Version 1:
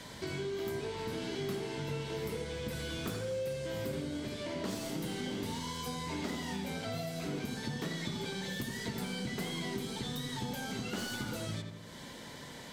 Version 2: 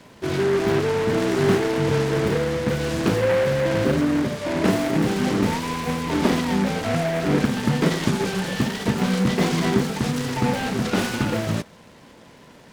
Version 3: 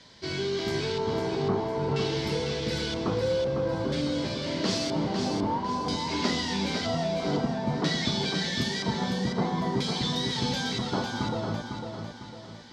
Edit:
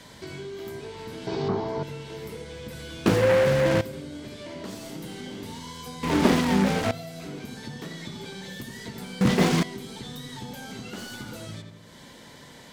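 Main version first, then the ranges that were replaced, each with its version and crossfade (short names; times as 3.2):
1
1.27–1.83 from 3
3.06–3.81 from 2
6.03–6.91 from 2
9.21–9.63 from 2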